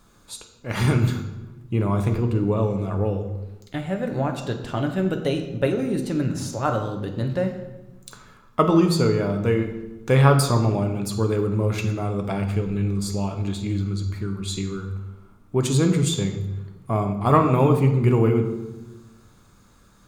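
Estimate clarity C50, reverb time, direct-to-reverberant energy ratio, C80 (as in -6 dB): 8.5 dB, 1.1 s, 5.0 dB, 10.5 dB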